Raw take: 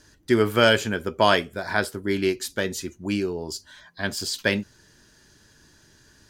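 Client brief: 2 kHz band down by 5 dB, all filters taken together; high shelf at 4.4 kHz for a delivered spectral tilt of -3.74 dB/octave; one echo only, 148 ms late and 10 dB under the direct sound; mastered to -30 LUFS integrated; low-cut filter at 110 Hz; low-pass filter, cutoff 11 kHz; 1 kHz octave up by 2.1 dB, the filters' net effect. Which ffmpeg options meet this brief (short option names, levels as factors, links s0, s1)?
-af "highpass=110,lowpass=11000,equalizer=f=1000:t=o:g=5.5,equalizer=f=2000:t=o:g=-8.5,highshelf=f=4400:g=-8.5,aecho=1:1:148:0.316,volume=0.501"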